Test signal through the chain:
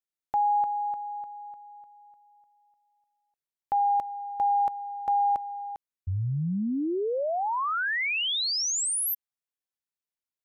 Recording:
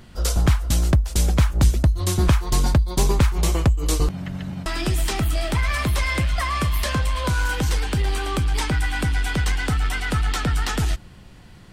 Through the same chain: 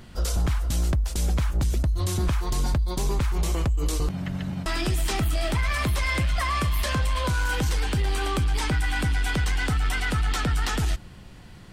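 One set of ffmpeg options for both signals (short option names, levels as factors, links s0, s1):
-af "alimiter=limit=0.126:level=0:latency=1:release=18"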